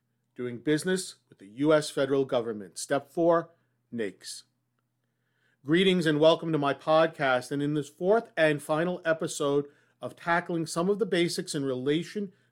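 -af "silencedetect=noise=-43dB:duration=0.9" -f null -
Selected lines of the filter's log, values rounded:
silence_start: 4.40
silence_end: 5.66 | silence_duration: 1.26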